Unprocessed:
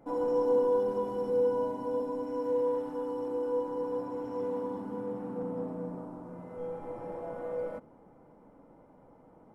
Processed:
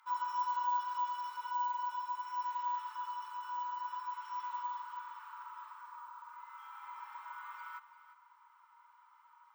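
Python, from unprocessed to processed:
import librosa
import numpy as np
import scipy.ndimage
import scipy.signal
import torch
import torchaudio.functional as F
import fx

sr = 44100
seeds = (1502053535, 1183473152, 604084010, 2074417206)

p1 = scipy.signal.sosfilt(scipy.signal.cheby1(6, 6, 920.0, 'highpass', fs=sr, output='sos'), x)
p2 = p1 + fx.echo_single(p1, sr, ms=348, db=-14.0, dry=0)
p3 = np.repeat(scipy.signal.resample_poly(p2, 1, 2), 2)[:len(p2)]
y = F.gain(torch.from_numpy(p3), 9.0).numpy()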